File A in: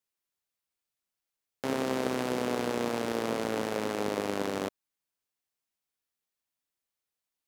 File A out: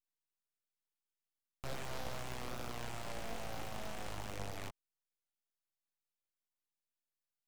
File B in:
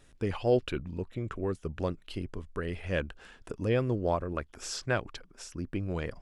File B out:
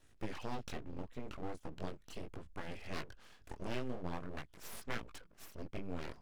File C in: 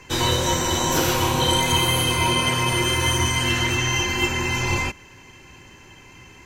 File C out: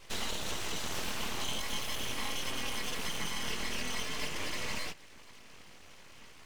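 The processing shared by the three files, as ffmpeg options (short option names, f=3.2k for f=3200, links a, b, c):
-filter_complex "[0:a]flanger=delay=17.5:depth=6.2:speed=0.4,acrossover=split=280|1500|4400[a][b][c][d];[a]acompressor=threshold=-32dB:ratio=4[e];[b]acompressor=threshold=-40dB:ratio=4[f];[c]acompressor=threshold=-33dB:ratio=4[g];[d]acompressor=threshold=-44dB:ratio=4[h];[e][f][g][h]amix=inputs=4:normalize=0,aeval=exprs='abs(val(0))':c=same,volume=-3dB"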